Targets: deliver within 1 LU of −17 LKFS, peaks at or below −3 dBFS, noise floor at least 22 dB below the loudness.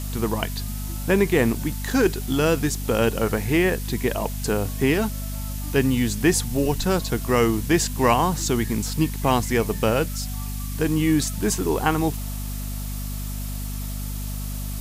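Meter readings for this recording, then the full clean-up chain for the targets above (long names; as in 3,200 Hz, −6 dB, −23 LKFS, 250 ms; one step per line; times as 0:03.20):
mains hum 50 Hz; hum harmonics up to 250 Hz; level of the hum −27 dBFS; background noise floor −30 dBFS; target noise floor −46 dBFS; integrated loudness −23.5 LKFS; sample peak −5.5 dBFS; target loudness −17.0 LKFS
→ mains-hum notches 50/100/150/200/250 Hz
noise reduction from a noise print 16 dB
level +6.5 dB
brickwall limiter −3 dBFS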